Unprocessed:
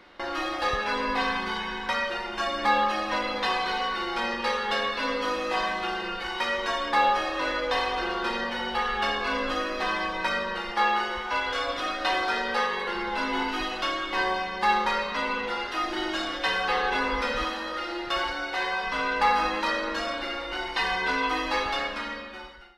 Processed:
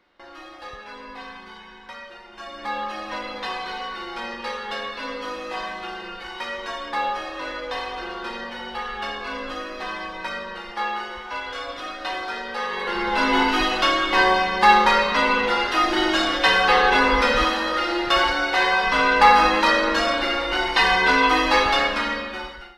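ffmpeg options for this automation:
-af "volume=9dB,afade=t=in:st=2.28:d=0.81:silence=0.375837,afade=t=in:st=12.58:d=0.74:silence=0.251189"

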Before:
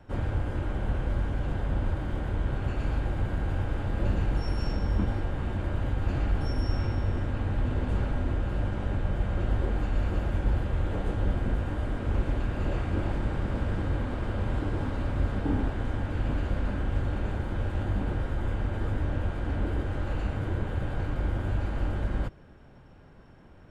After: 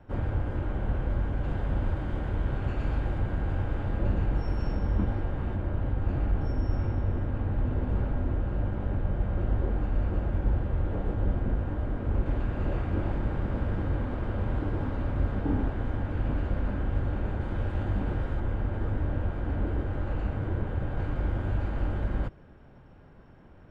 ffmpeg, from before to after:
-af "asetnsamples=n=441:p=0,asendcmd='1.44 lowpass f 3400;3.18 lowpass f 2400;3.97 lowpass f 1700;5.56 lowpass f 1100;12.26 lowpass f 1800;17.41 lowpass f 3000;18.4 lowpass f 1600;20.97 lowpass f 2600',lowpass=f=2k:p=1"

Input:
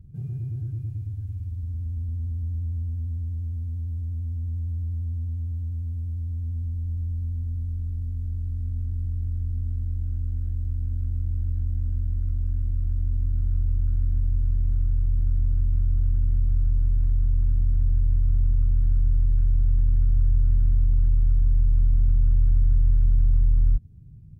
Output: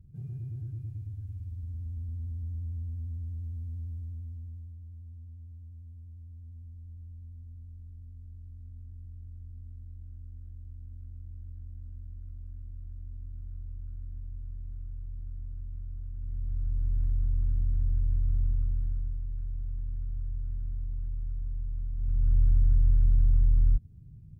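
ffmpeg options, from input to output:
-af "volume=15.5dB,afade=t=out:st=3.81:d=0.95:silence=0.316228,afade=t=in:st=16.14:d=0.86:silence=0.281838,afade=t=out:st=18.45:d=0.75:silence=0.375837,afade=t=in:st=21.96:d=0.42:silence=0.266073"

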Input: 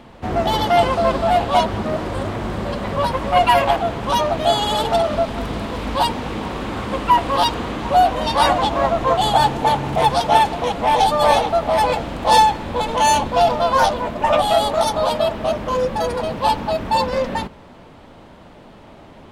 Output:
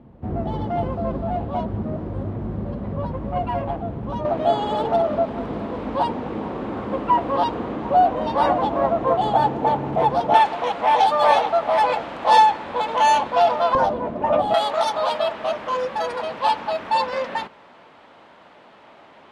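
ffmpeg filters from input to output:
-af "asetnsamples=n=441:p=0,asendcmd='4.25 bandpass f 380;10.34 bandpass f 1200;13.75 bandpass f 330;14.54 bandpass f 1600',bandpass=f=120:t=q:w=0.56:csg=0"

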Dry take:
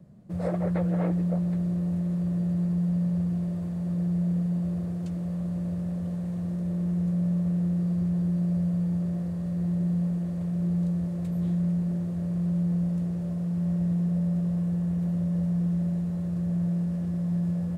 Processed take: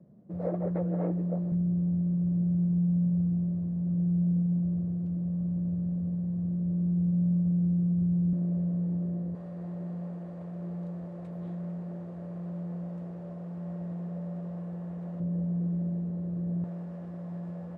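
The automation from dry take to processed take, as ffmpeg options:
-af "asetnsamples=n=441:p=0,asendcmd='1.52 bandpass f 160;8.33 bandpass f 320;9.35 bandpass f 750;15.2 bandpass f 350;16.64 bandpass f 790',bandpass=f=370:t=q:w=0.8:csg=0"

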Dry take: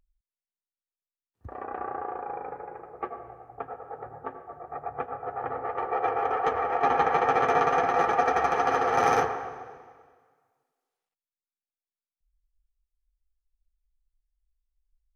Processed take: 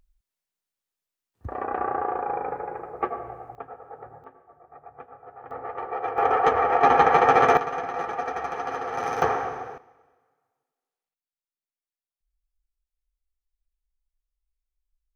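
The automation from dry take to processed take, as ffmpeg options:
-af "asetnsamples=n=441:p=0,asendcmd='3.55 volume volume -2.5dB;4.24 volume volume -11dB;5.51 volume volume -2.5dB;6.18 volume volume 6dB;7.57 volume volume -6dB;9.22 volume volume 6.5dB;9.78 volume volume -5dB',volume=7dB"

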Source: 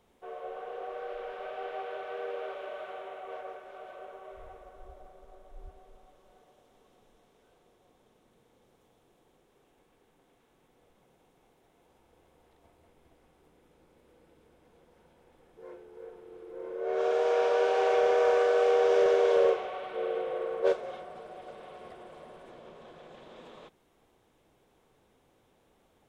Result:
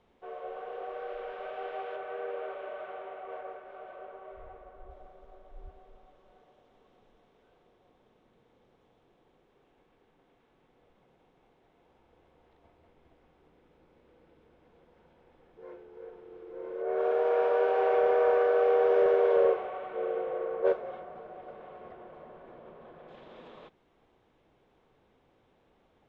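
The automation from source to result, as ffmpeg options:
-af "asetnsamples=n=441:p=0,asendcmd='1.96 lowpass f 2400;4.91 lowpass f 3600;16.82 lowpass f 1900;23.08 lowpass f 3600',lowpass=3.8k"

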